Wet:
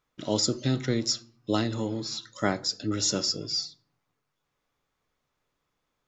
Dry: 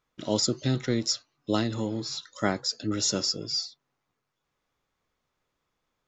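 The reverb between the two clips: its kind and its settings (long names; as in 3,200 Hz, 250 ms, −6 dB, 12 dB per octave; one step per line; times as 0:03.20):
rectangular room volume 610 cubic metres, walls furnished, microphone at 0.35 metres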